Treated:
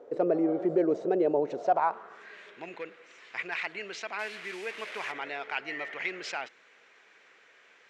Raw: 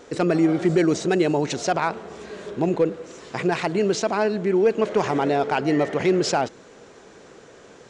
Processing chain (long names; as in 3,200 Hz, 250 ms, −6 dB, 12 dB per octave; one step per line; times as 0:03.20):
0:04.19–0:05.12: linear delta modulator 64 kbit/s, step −26.5 dBFS
band-pass filter sweep 530 Hz → 2,200 Hz, 0:01.55–0:02.39